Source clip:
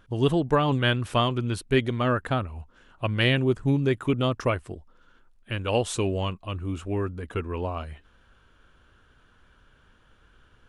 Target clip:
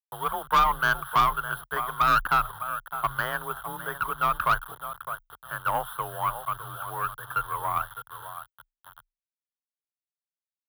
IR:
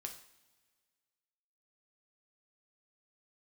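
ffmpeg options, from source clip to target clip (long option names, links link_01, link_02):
-filter_complex "[0:a]acrossover=split=420 2200:gain=0.0891 1 0.2[link_01][link_02][link_03];[link_01][link_02][link_03]amix=inputs=3:normalize=0,asplit=2[link_04][link_05];[link_05]adelay=608,lowpass=frequency=1100:poles=1,volume=-10.5dB,asplit=2[link_06][link_07];[link_07]adelay=608,lowpass=frequency=1100:poles=1,volume=0.32,asplit=2[link_08][link_09];[link_09]adelay=608,lowpass=frequency=1100:poles=1,volume=0.32[link_10];[link_04][link_06][link_08][link_10]amix=inputs=4:normalize=0,acrossover=split=2600[link_11][link_12];[link_12]acompressor=threshold=-53dB:ratio=4:attack=1:release=60[link_13];[link_11][link_13]amix=inputs=2:normalize=0,acrusher=bits=7:mix=0:aa=0.000001,firequalizer=gain_entry='entry(100,0);entry(190,-21);entry(540,-13);entry(880,2);entry(1400,9);entry(2300,-28);entry(3200,2);entry(4800,-21);entry(7100,-28);entry(10000,7)':delay=0.05:min_phase=1,aeval=exprs='(tanh(12.6*val(0)+0.35)-tanh(0.35))/12.6':channel_layout=same,afreqshift=28,volume=7.5dB"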